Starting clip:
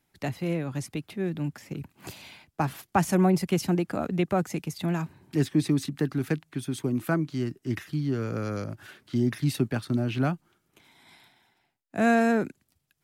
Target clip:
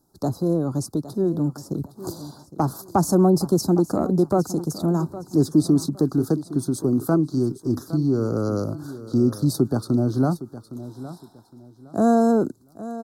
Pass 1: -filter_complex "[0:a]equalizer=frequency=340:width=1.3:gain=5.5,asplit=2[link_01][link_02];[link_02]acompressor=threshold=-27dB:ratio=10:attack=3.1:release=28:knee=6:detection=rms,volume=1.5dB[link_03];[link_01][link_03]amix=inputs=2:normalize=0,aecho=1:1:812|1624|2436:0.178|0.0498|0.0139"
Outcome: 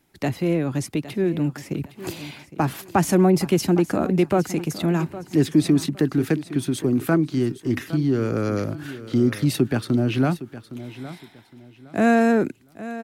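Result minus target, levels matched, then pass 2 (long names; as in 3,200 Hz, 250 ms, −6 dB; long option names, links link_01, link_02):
2,000 Hz band +14.0 dB
-filter_complex "[0:a]asuperstop=centerf=2400:order=8:qfactor=0.8,equalizer=frequency=340:width=1.3:gain=5.5,asplit=2[link_01][link_02];[link_02]acompressor=threshold=-27dB:ratio=10:attack=3.1:release=28:knee=6:detection=rms,volume=1.5dB[link_03];[link_01][link_03]amix=inputs=2:normalize=0,aecho=1:1:812|1624|2436:0.178|0.0498|0.0139"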